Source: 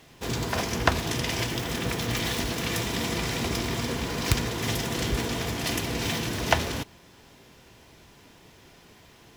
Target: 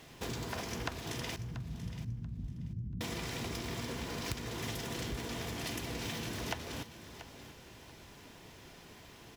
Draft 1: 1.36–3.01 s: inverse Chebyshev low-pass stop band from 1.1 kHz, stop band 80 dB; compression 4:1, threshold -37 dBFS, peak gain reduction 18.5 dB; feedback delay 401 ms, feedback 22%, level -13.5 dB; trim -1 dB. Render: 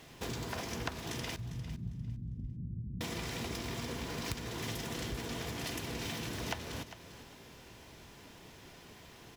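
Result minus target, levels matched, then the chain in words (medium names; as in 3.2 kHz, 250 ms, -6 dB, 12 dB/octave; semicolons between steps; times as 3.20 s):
echo 284 ms early
1.36–3.01 s: inverse Chebyshev low-pass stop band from 1.1 kHz, stop band 80 dB; compression 4:1, threshold -37 dBFS, peak gain reduction 18.5 dB; feedback delay 685 ms, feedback 22%, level -13.5 dB; trim -1 dB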